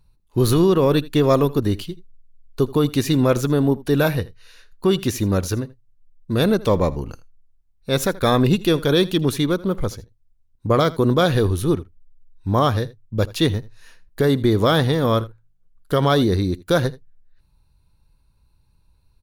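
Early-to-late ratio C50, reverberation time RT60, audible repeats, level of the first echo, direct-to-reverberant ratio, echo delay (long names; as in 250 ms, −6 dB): no reverb audible, no reverb audible, 1, −20.0 dB, no reverb audible, 80 ms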